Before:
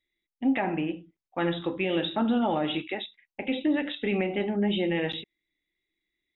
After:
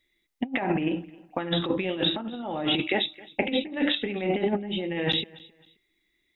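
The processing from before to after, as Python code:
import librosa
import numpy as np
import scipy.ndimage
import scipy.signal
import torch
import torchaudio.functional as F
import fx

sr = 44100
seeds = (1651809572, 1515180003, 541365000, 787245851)

p1 = fx.over_compress(x, sr, threshold_db=-31.0, ratio=-0.5)
p2 = p1 + fx.echo_feedback(p1, sr, ms=265, feedback_pct=28, wet_db=-22.5, dry=0)
y = p2 * librosa.db_to_amplitude(5.0)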